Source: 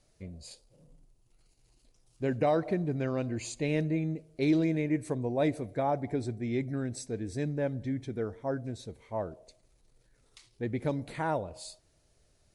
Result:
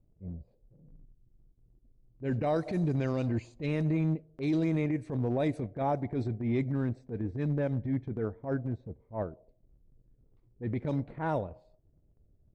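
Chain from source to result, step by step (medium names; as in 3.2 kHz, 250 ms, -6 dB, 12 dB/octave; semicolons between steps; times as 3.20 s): level-controlled noise filter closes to 330 Hz, open at -24 dBFS; tone controls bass +4 dB, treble -2 dB, from 2.55 s treble +13 dB, from 3.65 s treble 0 dB; peak limiter -23 dBFS, peak gain reduction 7.5 dB; transient shaper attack -11 dB, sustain -7 dB; trim +3 dB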